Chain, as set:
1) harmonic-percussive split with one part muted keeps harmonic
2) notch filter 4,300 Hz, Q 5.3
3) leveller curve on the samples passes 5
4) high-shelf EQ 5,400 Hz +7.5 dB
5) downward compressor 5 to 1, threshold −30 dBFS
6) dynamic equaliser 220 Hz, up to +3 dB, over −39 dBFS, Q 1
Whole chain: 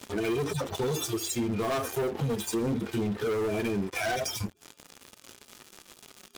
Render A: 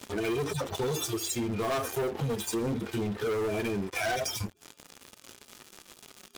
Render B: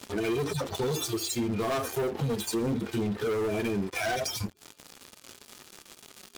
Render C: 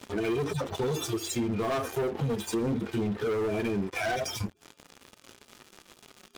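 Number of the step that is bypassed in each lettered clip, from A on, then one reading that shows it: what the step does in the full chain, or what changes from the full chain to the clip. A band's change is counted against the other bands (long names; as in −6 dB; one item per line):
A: 6, 250 Hz band −2.0 dB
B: 2, change in momentary loudness spread −1 LU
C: 4, 8 kHz band −3.5 dB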